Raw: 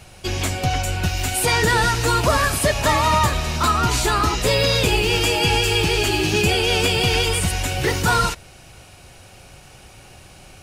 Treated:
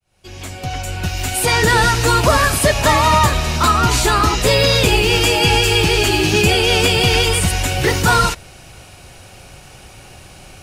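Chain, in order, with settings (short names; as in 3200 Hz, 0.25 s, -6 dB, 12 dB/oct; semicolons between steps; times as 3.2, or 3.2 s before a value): opening faded in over 1.78 s; gain +4.5 dB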